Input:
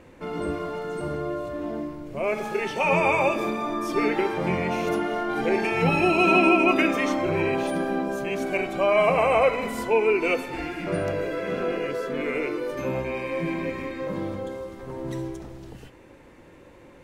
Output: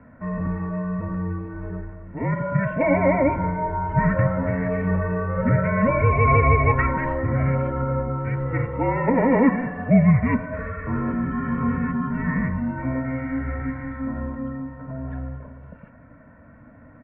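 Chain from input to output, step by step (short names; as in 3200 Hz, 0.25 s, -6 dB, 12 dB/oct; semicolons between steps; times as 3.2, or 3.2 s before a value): comb 2.4 ms, depth 89%; mistuned SSB -260 Hz 340–2100 Hz; gain +1.5 dB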